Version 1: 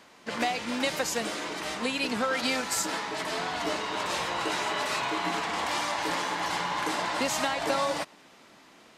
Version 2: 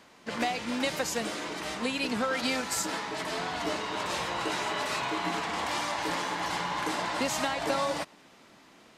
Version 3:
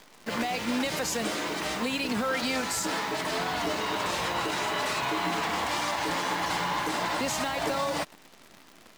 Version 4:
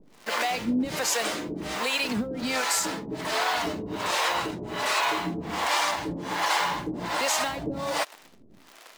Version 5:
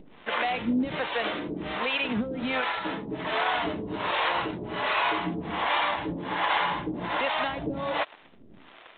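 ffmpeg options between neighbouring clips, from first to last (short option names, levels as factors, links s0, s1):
-af "lowshelf=f=240:g=4.5,volume=0.794"
-filter_complex "[0:a]acrossover=split=130[s0][s1];[s1]alimiter=level_in=1.06:limit=0.0631:level=0:latency=1:release=48,volume=0.944[s2];[s0][s2]amix=inputs=2:normalize=0,acrusher=bits=9:dc=4:mix=0:aa=0.000001,volume=1.68"
-filter_complex "[0:a]acrossover=split=420[s0][s1];[s0]aeval=exprs='val(0)*(1-1/2+1/2*cos(2*PI*1.3*n/s))':c=same[s2];[s1]aeval=exprs='val(0)*(1-1/2-1/2*cos(2*PI*1.3*n/s))':c=same[s3];[s2][s3]amix=inputs=2:normalize=0,volume=2"
-af "acompressor=mode=upward:threshold=0.00708:ratio=2.5" -ar 8000 -c:a adpcm_g726 -b:a 32k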